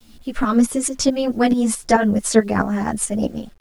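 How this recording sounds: tremolo saw up 4.6 Hz, depth 75%; a quantiser's noise floor 10-bit, dither none; a shimmering, thickened sound

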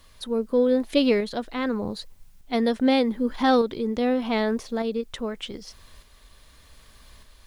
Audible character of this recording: a quantiser's noise floor 12-bit, dither triangular; tremolo saw up 0.83 Hz, depth 40%

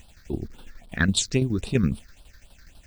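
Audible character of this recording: a quantiser's noise floor 10-bit, dither none; tremolo saw down 12 Hz, depth 65%; phasing stages 6, 3.7 Hz, lowest notch 740–1900 Hz

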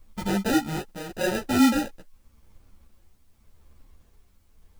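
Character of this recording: aliases and images of a low sample rate 1100 Hz, jitter 0%; tremolo triangle 0.85 Hz, depth 65%; a quantiser's noise floor 12-bit, dither triangular; a shimmering, thickened sound

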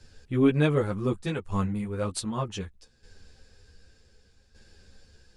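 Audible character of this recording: tremolo saw down 0.66 Hz, depth 70%; a shimmering, thickened sound

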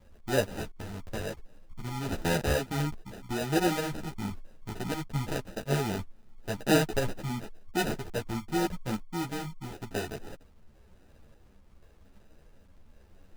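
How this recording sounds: phasing stages 6, 0.92 Hz, lowest notch 460–4300 Hz; aliases and images of a low sample rate 1100 Hz, jitter 0%; a shimmering, thickened sound

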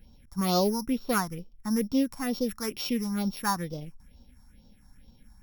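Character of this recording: a buzz of ramps at a fixed pitch in blocks of 8 samples; phasing stages 4, 2.2 Hz, lowest notch 450–1900 Hz

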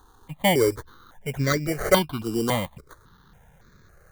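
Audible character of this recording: aliases and images of a low sample rate 2600 Hz, jitter 0%; notches that jump at a steady rate 3.6 Hz 590–3000 Hz

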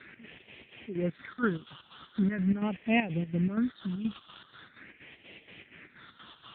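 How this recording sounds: a quantiser's noise floor 6-bit, dither triangular; chopped level 4.2 Hz, depth 65%, duty 60%; phasing stages 6, 0.42 Hz, lowest notch 550–1200 Hz; AMR-NB

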